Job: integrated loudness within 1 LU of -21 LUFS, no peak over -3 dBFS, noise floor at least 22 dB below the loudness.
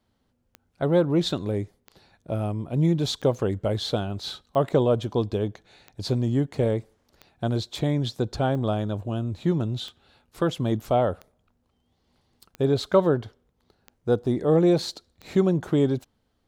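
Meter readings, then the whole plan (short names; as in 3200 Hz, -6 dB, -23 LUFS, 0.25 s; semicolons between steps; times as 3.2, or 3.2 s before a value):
clicks 12; loudness -25.5 LUFS; peak -6.5 dBFS; loudness target -21.0 LUFS
-> de-click; gain +4.5 dB; limiter -3 dBFS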